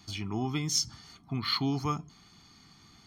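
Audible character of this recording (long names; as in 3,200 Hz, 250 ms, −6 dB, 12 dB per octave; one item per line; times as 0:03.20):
background noise floor −59 dBFS
spectral slope −3.5 dB per octave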